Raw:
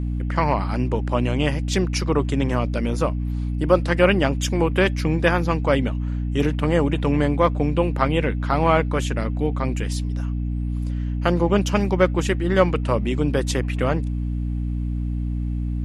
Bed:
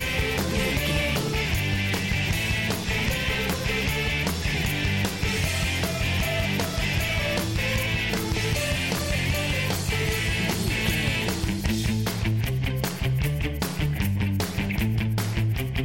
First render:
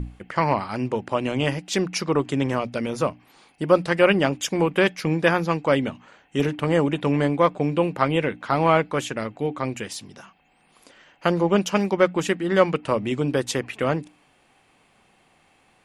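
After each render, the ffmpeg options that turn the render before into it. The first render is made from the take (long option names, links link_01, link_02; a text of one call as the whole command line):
ffmpeg -i in.wav -af "bandreject=frequency=60:width_type=h:width=6,bandreject=frequency=120:width_type=h:width=6,bandreject=frequency=180:width_type=h:width=6,bandreject=frequency=240:width_type=h:width=6,bandreject=frequency=300:width_type=h:width=6" out.wav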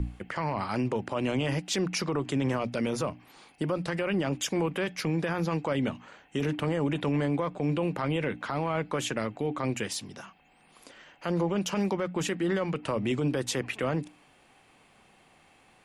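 ffmpeg -i in.wav -filter_complex "[0:a]acrossover=split=150[link_01][link_02];[link_02]acompressor=threshold=-20dB:ratio=6[link_03];[link_01][link_03]amix=inputs=2:normalize=0,alimiter=limit=-20dB:level=0:latency=1:release=22" out.wav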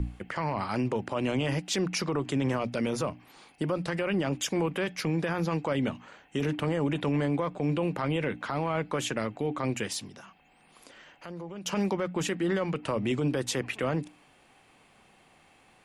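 ffmpeg -i in.wav -filter_complex "[0:a]asplit=3[link_01][link_02][link_03];[link_01]afade=type=out:start_time=10.08:duration=0.02[link_04];[link_02]acompressor=threshold=-47dB:ratio=2:attack=3.2:release=140:knee=1:detection=peak,afade=type=in:start_time=10.08:duration=0.02,afade=type=out:start_time=11.65:duration=0.02[link_05];[link_03]afade=type=in:start_time=11.65:duration=0.02[link_06];[link_04][link_05][link_06]amix=inputs=3:normalize=0" out.wav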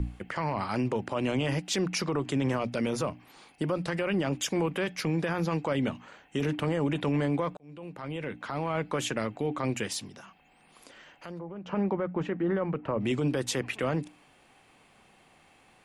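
ffmpeg -i in.wav -filter_complex "[0:a]asplit=3[link_01][link_02][link_03];[link_01]afade=type=out:start_time=11.38:duration=0.02[link_04];[link_02]lowpass=1500,afade=type=in:start_time=11.38:duration=0.02,afade=type=out:start_time=12.99:duration=0.02[link_05];[link_03]afade=type=in:start_time=12.99:duration=0.02[link_06];[link_04][link_05][link_06]amix=inputs=3:normalize=0,asplit=2[link_07][link_08];[link_07]atrim=end=7.57,asetpts=PTS-STARTPTS,afade=type=out:start_time=7.566:duration=0.004:curve=hsin[link_09];[link_08]atrim=start=7.57,asetpts=PTS-STARTPTS,afade=type=in:duration=1.29[link_10];[link_09][link_10]concat=n=2:v=0:a=1" out.wav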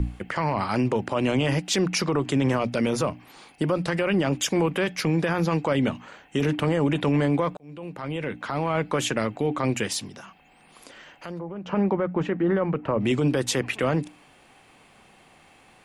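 ffmpeg -i in.wav -af "volume=5.5dB" out.wav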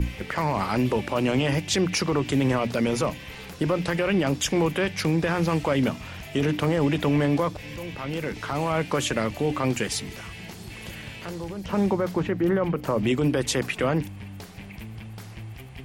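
ffmpeg -i in.wav -i bed.wav -filter_complex "[1:a]volume=-14.5dB[link_01];[0:a][link_01]amix=inputs=2:normalize=0" out.wav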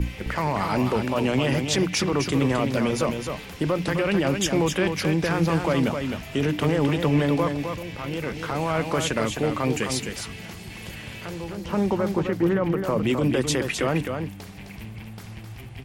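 ffmpeg -i in.wav -af "aecho=1:1:260:0.501" out.wav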